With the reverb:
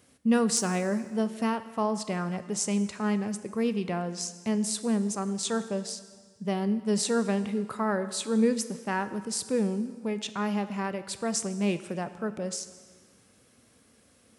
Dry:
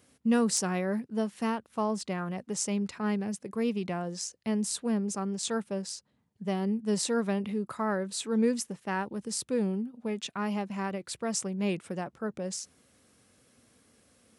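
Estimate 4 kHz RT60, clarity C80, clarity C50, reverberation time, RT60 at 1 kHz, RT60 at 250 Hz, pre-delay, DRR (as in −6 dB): 1.5 s, 14.0 dB, 13.0 dB, 1.6 s, 1.6 s, 1.7 s, 7 ms, 12.0 dB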